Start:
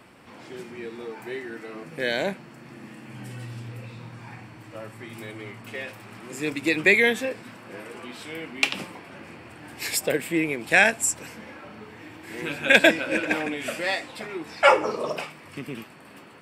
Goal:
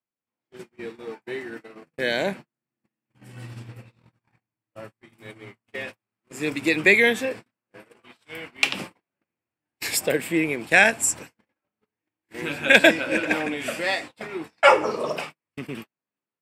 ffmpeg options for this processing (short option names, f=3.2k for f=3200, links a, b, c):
-filter_complex "[0:a]agate=range=-47dB:threshold=-36dB:ratio=16:detection=peak,asettb=1/sr,asplit=3[a][b][c];[a]atrim=end=8.034[d];[b]atrim=start=8.03:end=8.65,asetpts=PTS-STARTPTS,afade=t=in:d=0.004:c=qsin,afade=t=out:st=0.616:d=0.004:c=qsin,equalizer=f=270:t=o:w=1.8:g=-7.5[e];[c]atrim=start=8.646[f];[d][e]acrossfade=d=0.004:c1=hsin:c2=qsin[g];[g][f]acrossfade=d=0.004:c1=qsin:c2=hsin,volume=1.5dB"